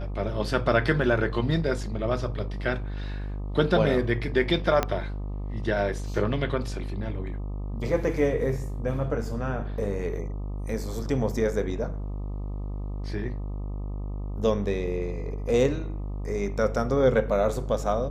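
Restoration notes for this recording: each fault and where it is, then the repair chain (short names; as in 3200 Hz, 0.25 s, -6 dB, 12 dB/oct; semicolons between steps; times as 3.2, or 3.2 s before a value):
buzz 50 Hz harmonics 25 -32 dBFS
4.83 pop -9 dBFS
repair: de-click; de-hum 50 Hz, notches 25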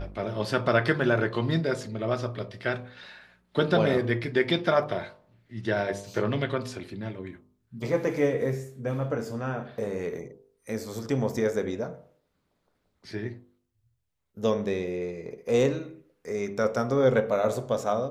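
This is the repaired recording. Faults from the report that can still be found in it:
4.83 pop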